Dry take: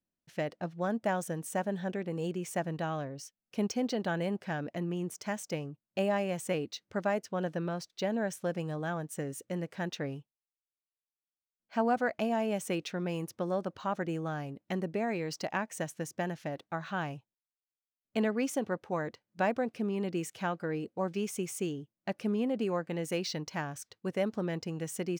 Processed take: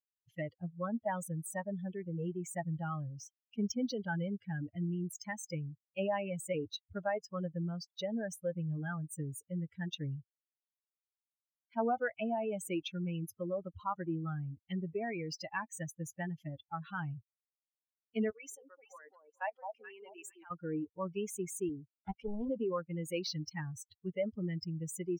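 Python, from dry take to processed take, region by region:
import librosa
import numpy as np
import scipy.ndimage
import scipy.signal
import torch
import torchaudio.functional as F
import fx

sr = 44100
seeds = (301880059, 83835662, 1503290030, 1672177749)

y = fx.chain(x, sr, fx.highpass(hz=550.0, slope=12),
    fx.level_steps(step_db=15),
    fx.echo_alternate(ms=214, hz=1100.0, feedback_pct=58, wet_db=-3), at=(18.3, 20.51))
y = fx.chain(y, sr, fx.highpass(hz=140.0, slope=12),
    fx.notch(hz=2700.0, q=9.5),
    fx.doppler_dist(depth_ms=0.96), at=(21.69, 22.49))
y = fx.bin_expand(y, sr, power=3.0)
y = fx.high_shelf(y, sr, hz=4400.0, db=-12.0)
y = fx.env_flatten(y, sr, amount_pct=50)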